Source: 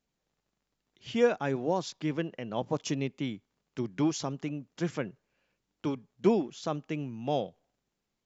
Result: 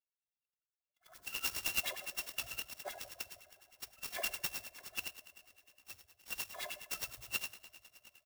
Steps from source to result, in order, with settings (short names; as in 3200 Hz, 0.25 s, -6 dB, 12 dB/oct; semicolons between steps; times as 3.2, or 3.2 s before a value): FFT order left unsorted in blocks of 256 samples; spectral gate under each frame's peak -15 dB strong; gate -53 dBFS, range -18 dB; high shelf 6900 Hz -9.5 dB; comb 1.8 ms, depth 74%; auto swell 0.347 s; compressor 2:1, threshold -41 dBFS, peak gain reduction 7 dB; two-slope reverb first 0.54 s, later 4 s, from -18 dB, DRR 0 dB; LFO band-pass sine 9.7 Hz 530–3500 Hz; clock jitter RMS 0.039 ms; gain +14.5 dB